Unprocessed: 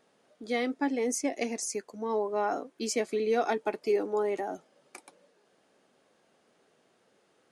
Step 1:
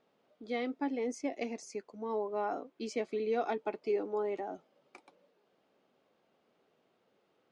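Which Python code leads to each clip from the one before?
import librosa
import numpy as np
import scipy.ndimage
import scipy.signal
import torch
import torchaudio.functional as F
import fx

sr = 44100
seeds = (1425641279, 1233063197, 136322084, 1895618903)

y = scipy.signal.sosfilt(scipy.signal.butter(2, 3800.0, 'lowpass', fs=sr, output='sos'), x)
y = fx.peak_eq(y, sr, hz=1700.0, db=-5.5, octaves=0.37)
y = y * 10.0 ** (-5.0 / 20.0)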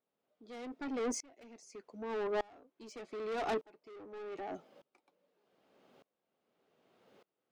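y = 10.0 ** (-39.0 / 20.0) * np.tanh(x / 10.0 ** (-39.0 / 20.0))
y = fx.tremolo_decay(y, sr, direction='swelling', hz=0.83, depth_db=29)
y = y * 10.0 ** (10.5 / 20.0)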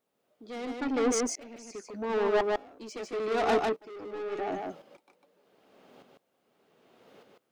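y = x + 10.0 ** (-3.0 / 20.0) * np.pad(x, (int(150 * sr / 1000.0), 0))[:len(x)]
y = y * 10.0 ** (8.0 / 20.0)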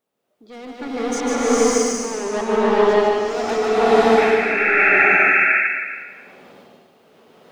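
y = fx.spec_paint(x, sr, seeds[0], shape='noise', start_s=4.17, length_s=0.87, low_hz=1300.0, high_hz=2700.0, level_db=-26.0)
y = y + 10.0 ** (-13.5 / 20.0) * np.pad(y, (int(280 * sr / 1000.0), 0))[:len(y)]
y = fx.rev_bloom(y, sr, seeds[1], attack_ms=620, drr_db=-11.0)
y = y * 10.0 ** (1.0 / 20.0)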